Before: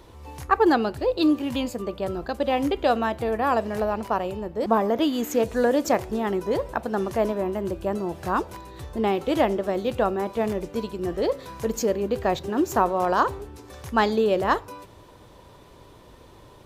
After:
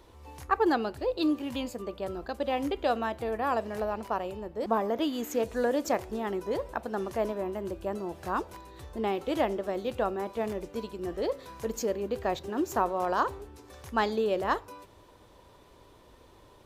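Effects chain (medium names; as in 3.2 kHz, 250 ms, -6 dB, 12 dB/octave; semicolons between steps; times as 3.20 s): peaking EQ 140 Hz -5 dB 1.1 oct; trim -6 dB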